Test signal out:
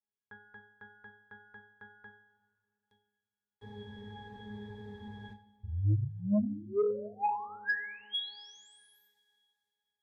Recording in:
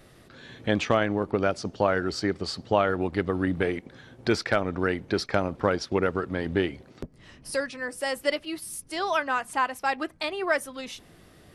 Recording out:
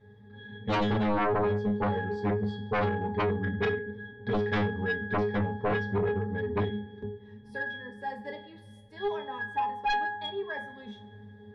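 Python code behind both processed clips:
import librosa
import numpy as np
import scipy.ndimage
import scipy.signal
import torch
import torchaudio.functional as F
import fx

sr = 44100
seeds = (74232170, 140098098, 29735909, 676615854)

y = fx.octave_resonator(x, sr, note='G#', decay_s=0.62)
y = fx.rev_double_slope(y, sr, seeds[0], early_s=0.31, late_s=2.8, knee_db=-22, drr_db=4.0)
y = fx.fold_sine(y, sr, drive_db=15, ceiling_db=-23.0)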